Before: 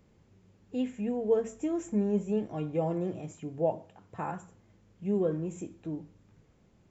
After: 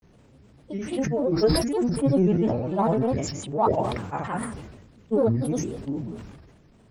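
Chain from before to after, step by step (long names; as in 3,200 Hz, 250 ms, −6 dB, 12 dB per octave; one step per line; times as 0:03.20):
transient designer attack −7 dB, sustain +5 dB
granular cloud, pitch spread up and down by 7 semitones
level that may fall only so fast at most 47 dB per second
level +9 dB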